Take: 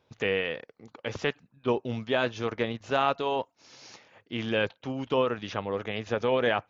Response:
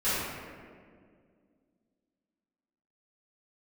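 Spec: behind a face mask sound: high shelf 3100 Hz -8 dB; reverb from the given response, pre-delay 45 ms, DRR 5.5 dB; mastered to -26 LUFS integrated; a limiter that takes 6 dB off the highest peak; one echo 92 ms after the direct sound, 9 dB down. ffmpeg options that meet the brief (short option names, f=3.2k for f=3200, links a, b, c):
-filter_complex "[0:a]alimiter=limit=-17dB:level=0:latency=1,aecho=1:1:92:0.355,asplit=2[a][b];[1:a]atrim=start_sample=2205,adelay=45[c];[b][c]afir=irnorm=-1:irlink=0,volume=-17.5dB[d];[a][d]amix=inputs=2:normalize=0,highshelf=f=3.1k:g=-8,volume=5dB"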